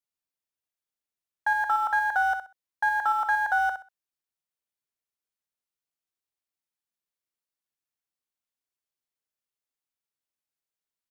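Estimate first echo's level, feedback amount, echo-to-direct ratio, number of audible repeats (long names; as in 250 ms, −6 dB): −8.5 dB, 22%, −8.5 dB, 3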